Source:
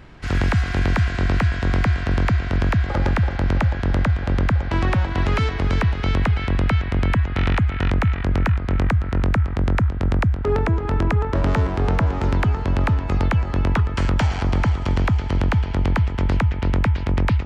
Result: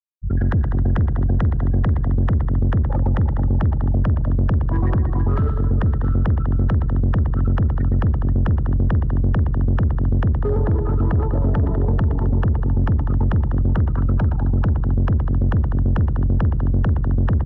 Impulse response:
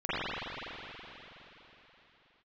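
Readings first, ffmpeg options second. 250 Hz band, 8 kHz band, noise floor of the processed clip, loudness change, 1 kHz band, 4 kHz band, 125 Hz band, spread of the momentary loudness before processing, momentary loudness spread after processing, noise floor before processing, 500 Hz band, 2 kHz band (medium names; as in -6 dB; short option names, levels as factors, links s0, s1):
+1.0 dB, no reading, -21 dBFS, +1.5 dB, -5.5 dB, under -15 dB, +2.0 dB, 1 LU, 1 LU, -27 dBFS, -2.0 dB, -10.5 dB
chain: -filter_complex "[0:a]afftfilt=real='re*gte(hypot(re,im),0.2)':imag='im*gte(hypot(re,im),0.2)':win_size=1024:overlap=0.75,asplit=2[s0][s1];[s1]volume=10.6,asoftclip=hard,volume=0.0944,volume=0.708[s2];[s0][s2]amix=inputs=2:normalize=0,asuperstop=centerf=2400:order=20:qfactor=2.7,aecho=1:1:119|198|265|487:0.376|0.224|0.126|0.211,acrossover=split=340[s3][s4];[s4]acompressor=threshold=0.0631:ratio=6[s5];[s3][s5]amix=inputs=2:normalize=0,highshelf=f=4300:g=-8,asoftclip=type=tanh:threshold=0.251"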